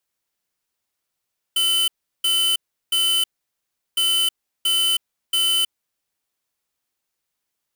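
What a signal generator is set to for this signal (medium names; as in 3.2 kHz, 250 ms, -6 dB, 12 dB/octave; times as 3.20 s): beep pattern square 3.03 kHz, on 0.32 s, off 0.36 s, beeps 3, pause 0.73 s, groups 2, -19 dBFS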